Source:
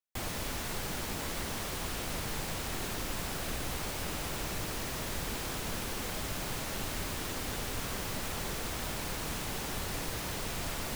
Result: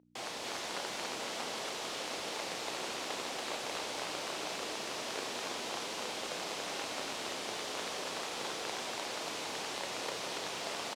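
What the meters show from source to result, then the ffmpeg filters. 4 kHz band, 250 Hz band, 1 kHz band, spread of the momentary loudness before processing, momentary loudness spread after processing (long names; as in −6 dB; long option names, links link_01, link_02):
+1.5 dB, −6.0 dB, +1.0 dB, 0 LU, 0 LU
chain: -filter_complex "[0:a]acrossover=split=790|2600[link_01][link_02][link_03];[link_01]aeval=exprs='(mod(31.6*val(0)+1,2)-1)/31.6':channel_layout=same[link_04];[link_02]equalizer=frequency=1700:width_type=o:width=1.4:gain=-7[link_05];[link_04][link_05][link_03]amix=inputs=3:normalize=0,aeval=exprs='val(0)+0.00398*(sin(2*PI*60*n/s)+sin(2*PI*2*60*n/s)/2+sin(2*PI*3*60*n/s)/3+sin(2*PI*4*60*n/s)/4+sin(2*PI*5*60*n/s)/5)':channel_layout=same,highpass=430,lowpass=6100,aecho=1:1:32.07|282.8:0.398|0.794"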